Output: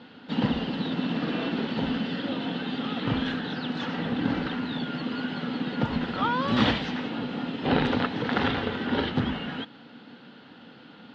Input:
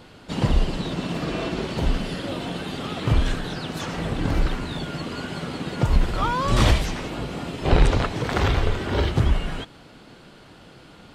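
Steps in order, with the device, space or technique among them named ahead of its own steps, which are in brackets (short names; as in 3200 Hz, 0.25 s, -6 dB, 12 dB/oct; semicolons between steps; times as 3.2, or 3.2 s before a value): kitchen radio (speaker cabinet 230–3700 Hz, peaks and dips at 240 Hz +8 dB, 370 Hz -9 dB, 630 Hz -9 dB, 1100 Hz -7 dB, 2300 Hz -7 dB); gain +2 dB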